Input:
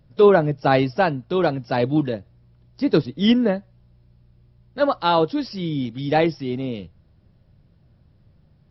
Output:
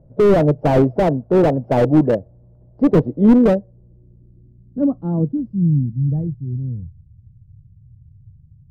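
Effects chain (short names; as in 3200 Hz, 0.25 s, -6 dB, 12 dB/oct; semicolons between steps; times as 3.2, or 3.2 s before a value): low-pass sweep 610 Hz -> 110 Hz, 3.18–6.42; high shelf 2400 Hz -9 dB; slew limiter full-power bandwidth 67 Hz; gain +5.5 dB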